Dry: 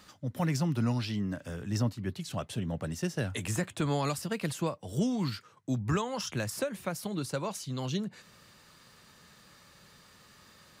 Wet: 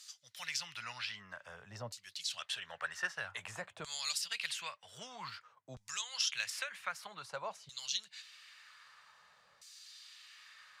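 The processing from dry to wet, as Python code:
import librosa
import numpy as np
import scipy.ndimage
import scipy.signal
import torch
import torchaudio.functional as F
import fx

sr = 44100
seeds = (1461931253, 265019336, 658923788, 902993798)

y = fx.filter_lfo_bandpass(x, sr, shape='saw_down', hz=0.52, low_hz=480.0, high_hz=6800.0, q=1.3)
y = fx.tone_stack(y, sr, knobs='10-0-10')
y = fx.spec_box(y, sr, start_s=2.41, length_s=0.71, low_hz=330.0, high_hz=1900.0, gain_db=8)
y = y * librosa.db_to_amplitude(9.5)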